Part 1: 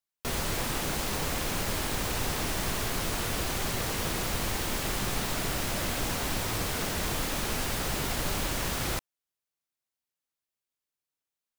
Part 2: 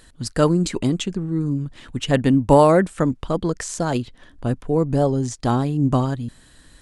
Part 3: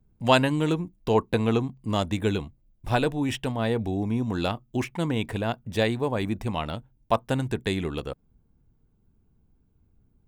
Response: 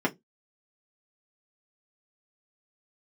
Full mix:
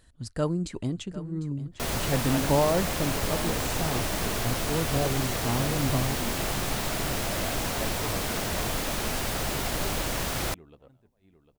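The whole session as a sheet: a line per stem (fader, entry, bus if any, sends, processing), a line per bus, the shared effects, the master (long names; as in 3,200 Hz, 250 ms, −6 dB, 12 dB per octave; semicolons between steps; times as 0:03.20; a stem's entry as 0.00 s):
+1.0 dB, 1.55 s, no send, no echo send, no processing
−12.5 dB, 0.00 s, no send, echo send −15.5 dB, parametric band 76 Hz +9 dB 1.8 octaves
−13.0 dB, 2.00 s, no send, echo send −8.5 dB, high-shelf EQ 3,300 Hz −12 dB; level that may rise only so fast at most 280 dB per second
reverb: not used
echo: repeating echo 751 ms, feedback 32%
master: parametric band 650 Hz +3.5 dB 0.46 octaves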